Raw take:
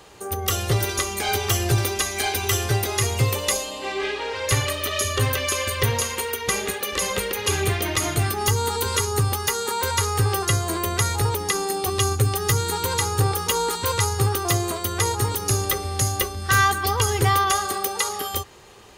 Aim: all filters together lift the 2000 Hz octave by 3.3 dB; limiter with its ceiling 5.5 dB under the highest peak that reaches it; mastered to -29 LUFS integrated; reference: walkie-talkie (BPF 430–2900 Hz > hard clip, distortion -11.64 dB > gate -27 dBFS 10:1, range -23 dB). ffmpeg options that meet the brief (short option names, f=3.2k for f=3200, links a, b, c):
-af "equalizer=f=2k:t=o:g=5,alimiter=limit=-10.5dB:level=0:latency=1,highpass=430,lowpass=2.9k,asoftclip=type=hard:threshold=-23dB,agate=range=-23dB:threshold=-27dB:ratio=10,volume=-1dB"